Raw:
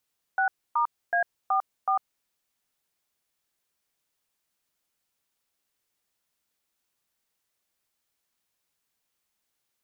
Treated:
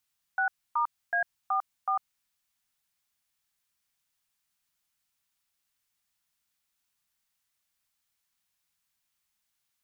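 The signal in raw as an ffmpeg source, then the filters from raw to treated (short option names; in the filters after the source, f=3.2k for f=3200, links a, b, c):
-f lavfi -i "aevalsrc='0.0668*clip(min(mod(t,0.374),0.1-mod(t,0.374))/0.002,0,1)*(eq(floor(t/0.374),0)*(sin(2*PI*770*mod(t,0.374))+sin(2*PI*1477*mod(t,0.374)))+eq(floor(t/0.374),1)*(sin(2*PI*941*mod(t,0.374))+sin(2*PI*1209*mod(t,0.374)))+eq(floor(t/0.374),2)*(sin(2*PI*697*mod(t,0.374))+sin(2*PI*1633*mod(t,0.374)))+eq(floor(t/0.374),3)*(sin(2*PI*770*mod(t,0.374))+sin(2*PI*1209*mod(t,0.374)))+eq(floor(t/0.374),4)*(sin(2*PI*770*mod(t,0.374))+sin(2*PI*1209*mod(t,0.374))))':d=1.87:s=44100"
-af "equalizer=f=430:t=o:w=1.2:g=-14"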